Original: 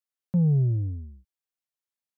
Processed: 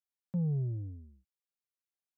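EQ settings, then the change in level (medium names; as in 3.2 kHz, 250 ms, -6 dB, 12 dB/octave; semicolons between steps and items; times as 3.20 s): bass shelf 69 Hz -11.5 dB; -8.0 dB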